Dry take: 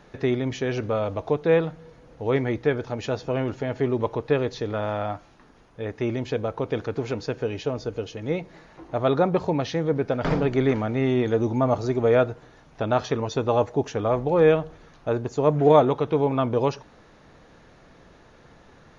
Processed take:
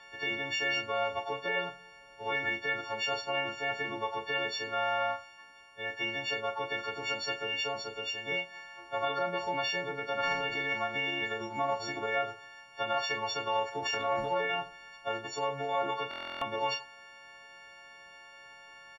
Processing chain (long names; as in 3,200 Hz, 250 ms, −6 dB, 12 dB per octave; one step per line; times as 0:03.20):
every partial snapped to a pitch grid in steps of 4 semitones
high-shelf EQ 2,300 Hz +8.5 dB
0:13.68–0:14.35: transient designer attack +5 dB, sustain +9 dB
brickwall limiter −14.5 dBFS, peak gain reduction 11 dB
0:10.54–0:12.03: transient designer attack +1 dB, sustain −6 dB
three-way crossover with the lows and the highs turned down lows −15 dB, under 560 Hz, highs −17 dB, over 3,800 Hz
on a send: ambience of single reflections 24 ms −8 dB, 38 ms −12 dB, 76 ms −17.5 dB
on the sum: buffer that repeats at 0:16.09, samples 1,024, times 13
level −4 dB